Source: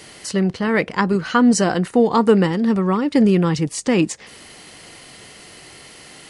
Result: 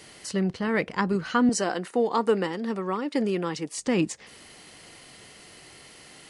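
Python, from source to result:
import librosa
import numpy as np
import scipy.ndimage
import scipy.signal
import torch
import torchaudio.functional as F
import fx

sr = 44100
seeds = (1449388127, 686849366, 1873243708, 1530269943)

y = fx.highpass(x, sr, hz=300.0, slope=12, at=(1.49, 3.78))
y = y * librosa.db_to_amplitude(-7.0)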